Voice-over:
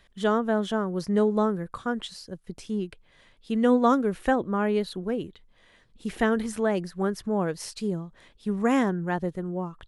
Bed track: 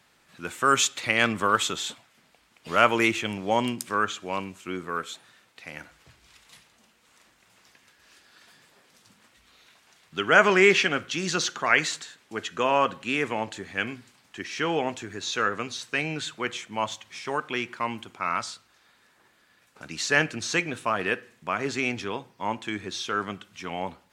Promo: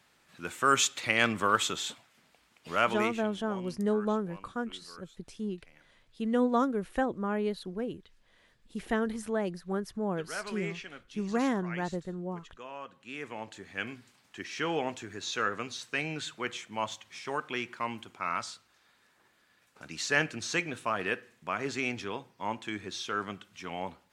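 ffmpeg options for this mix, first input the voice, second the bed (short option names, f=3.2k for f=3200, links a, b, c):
-filter_complex "[0:a]adelay=2700,volume=-6dB[a];[1:a]volume=12.5dB,afade=t=out:st=2.48:d=0.83:silence=0.133352,afade=t=in:st=12.9:d=1.23:silence=0.158489[b];[a][b]amix=inputs=2:normalize=0"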